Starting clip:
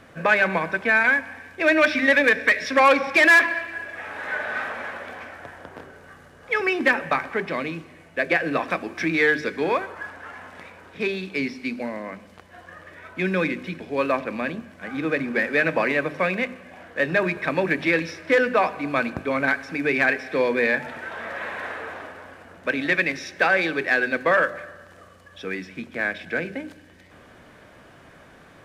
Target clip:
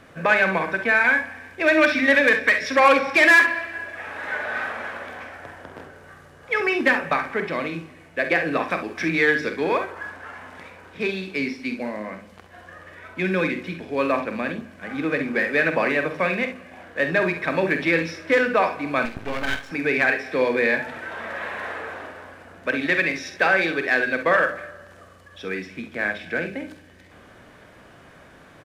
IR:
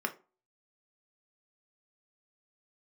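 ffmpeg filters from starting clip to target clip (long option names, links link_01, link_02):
-filter_complex "[0:a]aecho=1:1:47|66:0.335|0.266,asettb=1/sr,asplit=3[link_01][link_02][link_03];[link_01]atrim=end=19.054[link_04];[link_02]atrim=start=19.05:end=19.71,asetpts=PTS-STARTPTS,afade=type=in:duration=0.004:curve=qsin,afade=type=out:start_time=0.656:duration=0.004:curve=qsin,aeval=exprs='max(val(0),0)':channel_layout=same[link_05];[link_03]atrim=start=19.706[link_06];[link_04][link_05]acrossfade=duration=0.004:curve1=hsin:curve2=qsin[link_07];[link_07][link_06]acrossfade=duration=0.004:curve1=qsin:curve2=hsin"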